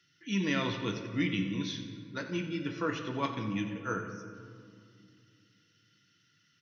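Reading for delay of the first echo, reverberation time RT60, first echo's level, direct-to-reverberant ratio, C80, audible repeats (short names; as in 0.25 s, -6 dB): 89 ms, 2.3 s, -13.5 dB, 4.5 dB, 7.5 dB, 2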